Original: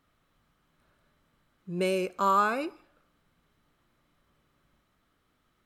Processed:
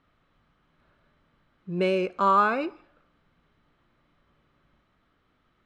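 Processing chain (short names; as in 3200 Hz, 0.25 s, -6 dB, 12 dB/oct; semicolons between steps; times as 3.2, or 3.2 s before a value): LPF 3600 Hz 12 dB/oct; gain +3.5 dB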